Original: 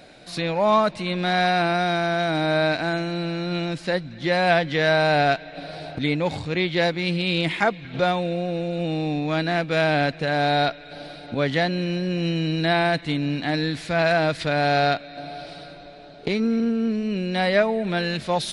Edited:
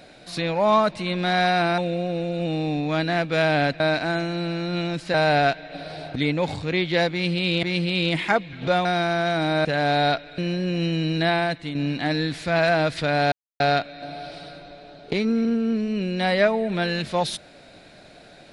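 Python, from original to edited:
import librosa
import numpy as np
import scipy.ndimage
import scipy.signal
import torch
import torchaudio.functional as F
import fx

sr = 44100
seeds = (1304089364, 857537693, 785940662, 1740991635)

y = fx.edit(x, sr, fx.swap(start_s=1.78, length_s=0.8, other_s=8.17, other_length_s=2.02),
    fx.cut(start_s=3.92, length_s=1.05),
    fx.repeat(start_s=6.95, length_s=0.51, count=2),
    fx.cut(start_s=10.92, length_s=0.89),
    fx.fade_out_to(start_s=12.64, length_s=0.54, floor_db=-7.5),
    fx.insert_silence(at_s=14.75, length_s=0.28), tone=tone)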